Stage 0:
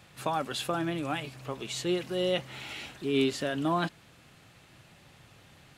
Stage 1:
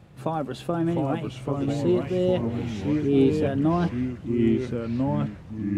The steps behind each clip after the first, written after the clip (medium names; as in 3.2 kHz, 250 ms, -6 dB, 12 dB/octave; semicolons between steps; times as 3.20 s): tilt shelf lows +9.5 dB, about 910 Hz; ever faster or slower copies 654 ms, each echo -3 st, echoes 3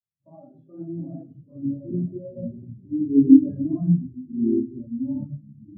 simulated room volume 340 m³, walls mixed, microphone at 2.6 m; spectral contrast expander 2.5:1; trim -2 dB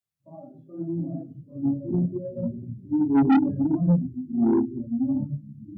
saturation -18 dBFS, distortion -5 dB; trim +3.5 dB